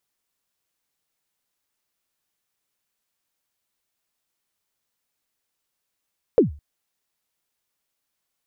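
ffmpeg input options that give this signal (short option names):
-f lavfi -i "aevalsrc='0.422*pow(10,-3*t/0.34)*sin(2*PI*(530*0.128/log(73/530)*(exp(log(73/530)*min(t,0.128)/0.128)-1)+73*max(t-0.128,0)))':d=0.21:s=44100"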